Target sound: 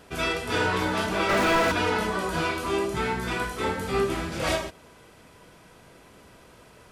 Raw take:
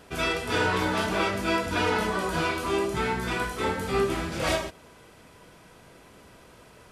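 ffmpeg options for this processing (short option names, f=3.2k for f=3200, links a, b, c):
-filter_complex "[0:a]asplit=3[a][b][c];[a]afade=t=out:st=1.28:d=0.02[d];[b]asplit=2[e][f];[f]highpass=f=720:p=1,volume=39dB,asoftclip=type=tanh:threshold=-13.5dB[g];[e][g]amix=inputs=2:normalize=0,lowpass=f=1.6k:p=1,volume=-6dB,afade=t=in:st=1.28:d=0.02,afade=t=out:st=1.71:d=0.02[h];[c]afade=t=in:st=1.71:d=0.02[i];[d][h][i]amix=inputs=3:normalize=0"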